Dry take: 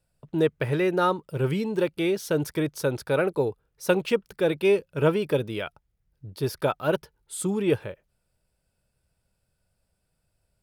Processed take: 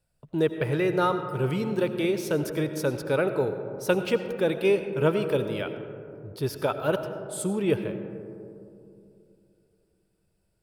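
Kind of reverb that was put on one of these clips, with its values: algorithmic reverb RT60 2.8 s, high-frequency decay 0.25×, pre-delay 50 ms, DRR 8.5 dB; trim -1.5 dB

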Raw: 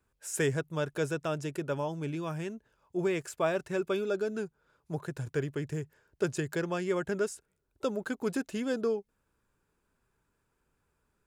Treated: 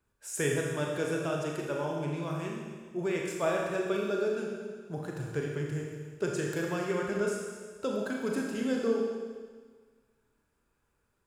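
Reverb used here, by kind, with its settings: Schroeder reverb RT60 1.6 s, combs from 27 ms, DRR -1 dB; trim -2.5 dB

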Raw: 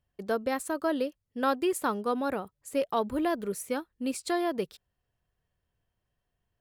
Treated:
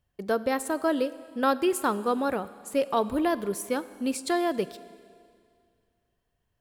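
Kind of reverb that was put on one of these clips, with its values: Schroeder reverb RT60 2.2 s, combs from 30 ms, DRR 15.5 dB; trim +3 dB

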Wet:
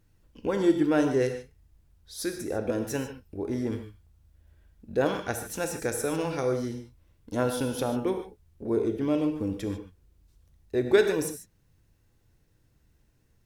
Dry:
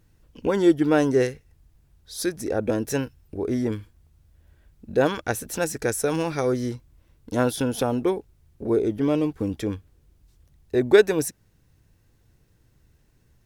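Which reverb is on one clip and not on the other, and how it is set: gated-style reverb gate 170 ms flat, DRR 5.5 dB; trim -5.5 dB

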